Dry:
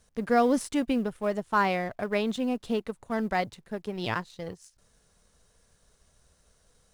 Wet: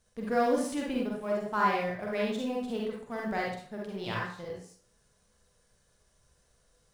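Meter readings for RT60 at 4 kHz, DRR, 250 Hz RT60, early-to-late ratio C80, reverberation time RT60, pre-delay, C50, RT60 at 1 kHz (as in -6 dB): 0.40 s, -3.0 dB, 0.50 s, 6.0 dB, 0.50 s, 39 ms, 0.0 dB, 0.55 s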